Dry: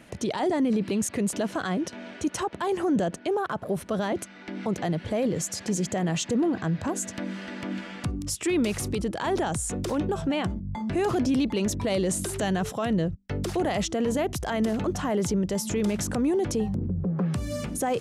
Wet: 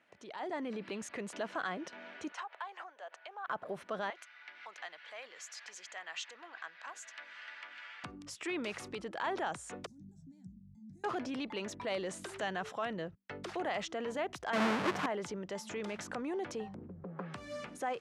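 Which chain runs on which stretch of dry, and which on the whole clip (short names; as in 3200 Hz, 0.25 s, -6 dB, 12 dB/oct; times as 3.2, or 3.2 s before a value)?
2.32–3.48 compressor 12:1, threshold -29 dBFS + HPF 630 Hz 24 dB/oct + air absorption 58 m
4.1–8.04 HPF 1300 Hz + bell 9100 Hz -5 dB 0.4 oct
9.86–11.04 elliptic band-stop 200–6400 Hz + high shelf 3700 Hz -11 dB
14.53–15.06 half-waves squared off + HPF 120 Hz 24 dB/oct + low shelf 320 Hz +8.5 dB
whole clip: LPF 1500 Hz 12 dB/oct; differentiator; AGC gain up to 10.5 dB; gain +2 dB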